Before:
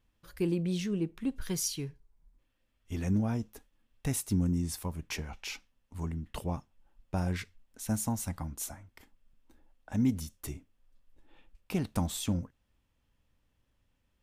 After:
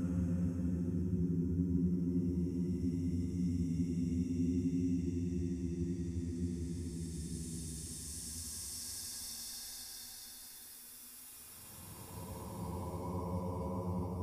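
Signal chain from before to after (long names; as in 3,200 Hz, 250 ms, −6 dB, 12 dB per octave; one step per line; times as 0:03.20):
tuned comb filter 120 Hz, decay 0.53 s, harmonics all, mix 60%
extreme stretch with random phases 33×, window 0.10 s, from 0:04.46
feedback echo with a band-pass in the loop 91 ms, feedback 79%, band-pass 340 Hz, level −4 dB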